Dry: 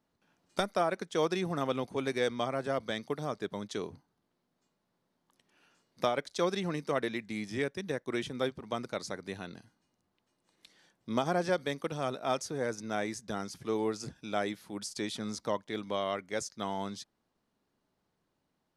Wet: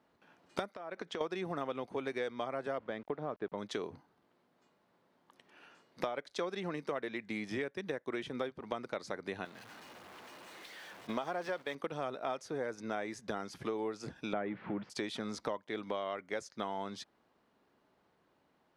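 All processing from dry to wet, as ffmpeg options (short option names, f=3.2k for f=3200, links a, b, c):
-filter_complex "[0:a]asettb=1/sr,asplit=3[a][b][c];[a]atrim=end=0.744[d];[b]atrim=start=0.74:end=1.21,asetpts=PTS-STARTPTS,afade=t=in:d=0.004:c=qsin,afade=t=out:st=0.466:d=0.004:c=qsin,lowpass=6.8k,acompressor=threshold=-42dB:ratio=16:attack=3.2:release=140:knee=1:detection=peak[e];[c]atrim=start=1.206[f];[d][e]acrossfade=d=0.004:c1=hsin:c2=qsin[g];[g][f]acrossfade=d=0.004:c1=qsin:c2=hsin,asettb=1/sr,asplit=3[h][i][j];[h]atrim=end=2.784[k];[i]atrim=start=2.78:end=3.58,asetpts=PTS-STARTPTS,afade=t=in:d=0.004:c=qsin,afade=t=out:st=0.796:d=0.004:c=qsin,highshelf=f=2.4k:g=-9.5,aeval=exprs='val(0)*gte(abs(val(0)),0.00211)':c=same,adynamicsmooth=sensitivity=2.5:basefreq=3.4k[l];[j]atrim=start=3.576[m];[k][l]acrossfade=d=0.004:c1=hsin:c2=qsin[n];[n][m]acrossfade=d=0.004:c1=qsin:c2=hsin,asettb=1/sr,asplit=3[o][p][q];[o]atrim=end=9.454[r];[p]atrim=start=9.45:end=11.75,asetpts=PTS-STARTPTS,afade=t=in:d=0.004:c=qsin,afade=t=out:st=2.296:d=0.004:c=qsin,aeval=exprs='val(0)+0.5*0.00891*sgn(val(0))':c=same,lowshelf=f=390:g=-8.5,agate=range=-10dB:threshold=-45dB:ratio=16:release=100:detection=peak[s];[q]atrim=start=11.746[t];[r][s]acrossfade=d=0.004:c1=hsin:c2=qsin[u];[u][t]acrossfade=d=0.004:c1=qsin:c2=hsin,asettb=1/sr,asplit=3[v][w][x];[v]atrim=end=14.334[y];[w]atrim=start=14.33:end=14.9,asetpts=PTS-STARTPTS,afade=t=in:d=0.004:c=qsin,afade=t=out:st=0.566:d=0.004:c=qsin,aeval=exprs='val(0)+0.5*0.00631*sgn(val(0))':c=same,lowpass=f=2.5k:w=0.5412,lowpass=f=2.5k:w=1.3066,equalizer=f=150:t=o:w=1.8:g=9.5[z];[x]atrim=start=14.896[aa];[y][z]acrossfade=d=0.004:c1=hsin:c2=qsin[ab];[ab][aa]acrossfade=d=0.004:c1=qsin:c2=hsin,highpass=40,bass=f=250:g=-8,treble=f=4k:g=-12,acompressor=threshold=-45dB:ratio=5,volume=9.5dB"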